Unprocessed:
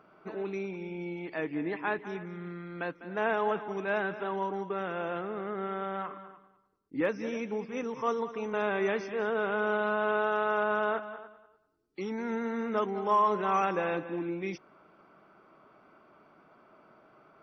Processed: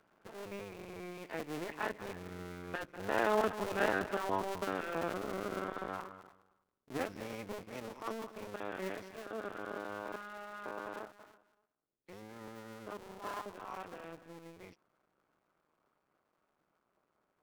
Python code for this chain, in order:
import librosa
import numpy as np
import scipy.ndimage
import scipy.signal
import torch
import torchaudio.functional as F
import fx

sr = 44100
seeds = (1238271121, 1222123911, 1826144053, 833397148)

y = fx.cycle_switch(x, sr, every=2, mode='muted')
y = fx.doppler_pass(y, sr, speed_mps=10, closest_m=15.0, pass_at_s=4.06)
y = y * 10.0 ** (1.5 / 20.0)